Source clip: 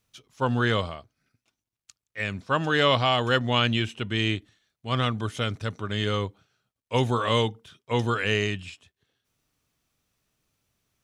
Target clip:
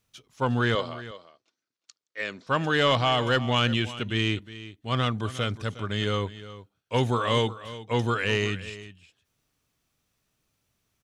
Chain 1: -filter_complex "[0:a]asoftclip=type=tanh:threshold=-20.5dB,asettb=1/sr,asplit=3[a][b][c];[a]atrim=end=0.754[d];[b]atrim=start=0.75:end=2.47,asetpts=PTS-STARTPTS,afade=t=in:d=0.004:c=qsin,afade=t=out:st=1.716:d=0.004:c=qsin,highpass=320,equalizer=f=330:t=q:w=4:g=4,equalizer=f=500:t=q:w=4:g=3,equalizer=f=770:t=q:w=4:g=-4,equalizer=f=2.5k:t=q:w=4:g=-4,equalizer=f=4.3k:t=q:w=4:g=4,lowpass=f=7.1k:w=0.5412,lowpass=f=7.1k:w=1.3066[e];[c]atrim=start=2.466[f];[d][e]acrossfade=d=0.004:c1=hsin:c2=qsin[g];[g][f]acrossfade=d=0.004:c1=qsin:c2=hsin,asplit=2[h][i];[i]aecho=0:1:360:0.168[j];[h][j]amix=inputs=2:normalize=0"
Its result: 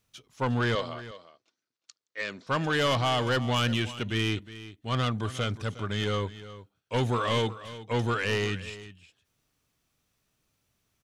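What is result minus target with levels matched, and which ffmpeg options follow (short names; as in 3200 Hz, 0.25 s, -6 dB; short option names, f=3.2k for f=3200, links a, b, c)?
soft clip: distortion +11 dB
-filter_complex "[0:a]asoftclip=type=tanh:threshold=-11dB,asettb=1/sr,asplit=3[a][b][c];[a]atrim=end=0.754[d];[b]atrim=start=0.75:end=2.47,asetpts=PTS-STARTPTS,afade=t=in:d=0.004:c=qsin,afade=t=out:st=1.716:d=0.004:c=qsin,highpass=320,equalizer=f=330:t=q:w=4:g=4,equalizer=f=500:t=q:w=4:g=3,equalizer=f=770:t=q:w=4:g=-4,equalizer=f=2.5k:t=q:w=4:g=-4,equalizer=f=4.3k:t=q:w=4:g=4,lowpass=f=7.1k:w=0.5412,lowpass=f=7.1k:w=1.3066[e];[c]atrim=start=2.466[f];[d][e]acrossfade=d=0.004:c1=hsin:c2=qsin[g];[g][f]acrossfade=d=0.004:c1=qsin:c2=hsin,asplit=2[h][i];[i]aecho=0:1:360:0.168[j];[h][j]amix=inputs=2:normalize=0"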